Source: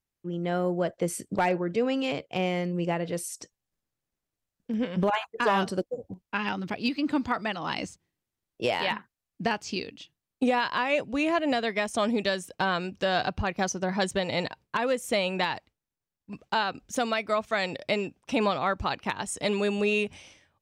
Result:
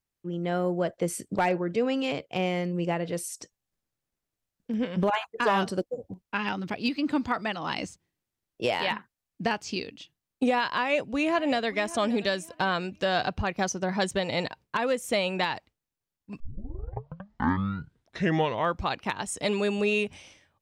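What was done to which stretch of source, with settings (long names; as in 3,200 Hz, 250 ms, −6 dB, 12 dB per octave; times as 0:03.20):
0:10.69–0:11.67: delay throw 580 ms, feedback 30%, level −17.5 dB
0:16.40: tape start 2.59 s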